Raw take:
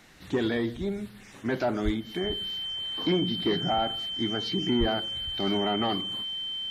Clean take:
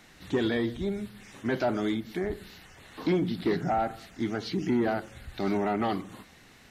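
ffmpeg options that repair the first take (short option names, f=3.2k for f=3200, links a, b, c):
-filter_complex "[0:a]bandreject=f=3.1k:w=30,asplit=3[a][b][c];[a]afade=t=out:st=1.84:d=0.02[d];[b]highpass=f=140:w=0.5412,highpass=f=140:w=1.3066,afade=t=in:st=1.84:d=0.02,afade=t=out:st=1.96:d=0.02[e];[c]afade=t=in:st=1.96:d=0.02[f];[d][e][f]amix=inputs=3:normalize=0,asplit=3[g][h][i];[g]afade=t=out:st=4.79:d=0.02[j];[h]highpass=f=140:w=0.5412,highpass=f=140:w=1.3066,afade=t=in:st=4.79:d=0.02,afade=t=out:st=4.91:d=0.02[k];[i]afade=t=in:st=4.91:d=0.02[l];[j][k][l]amix=inputs=3:normalize=0"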